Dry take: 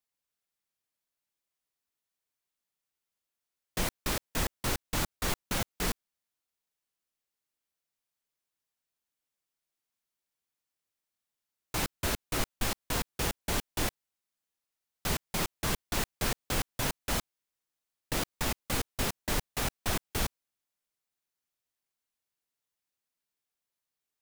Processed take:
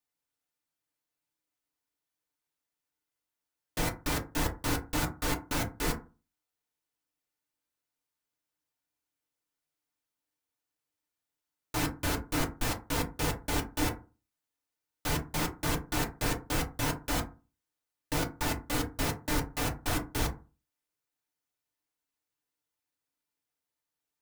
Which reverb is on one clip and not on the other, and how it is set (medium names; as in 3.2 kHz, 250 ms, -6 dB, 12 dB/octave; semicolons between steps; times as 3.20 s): FDN reverb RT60 0.32 s, low-frequency decay 1.2×, high-frequency decay 0.4×, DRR -0.5 dB; trim -2.5 dB